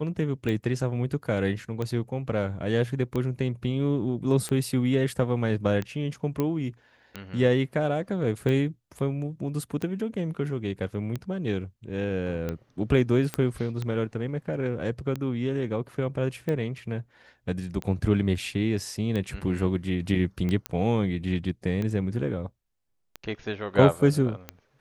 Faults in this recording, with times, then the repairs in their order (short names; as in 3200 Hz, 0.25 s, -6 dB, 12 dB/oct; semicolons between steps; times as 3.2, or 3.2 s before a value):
tick 45 rpm -18 dBFS
6.4 pop -14 dBFS
13.34 pop -13 dBFS
20.66 pop -13 dBFS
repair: de-click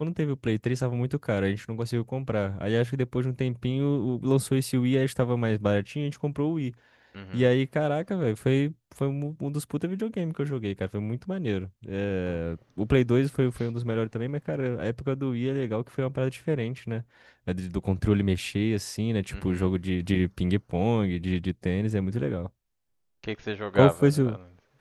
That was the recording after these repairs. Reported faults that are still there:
20.66 pop